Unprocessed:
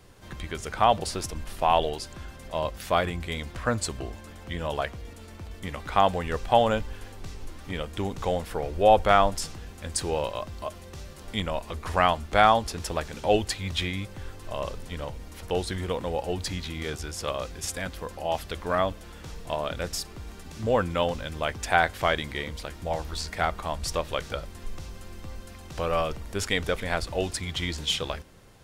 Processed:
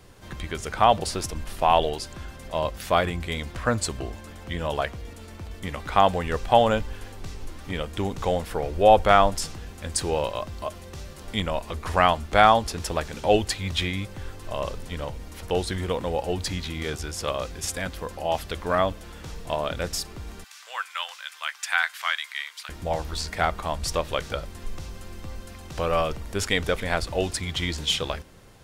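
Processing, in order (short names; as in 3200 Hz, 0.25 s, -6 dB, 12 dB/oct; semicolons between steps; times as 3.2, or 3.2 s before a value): 20.44–22.69 HPF 1200 Hz 24 dB/oct; gain +2.5 dB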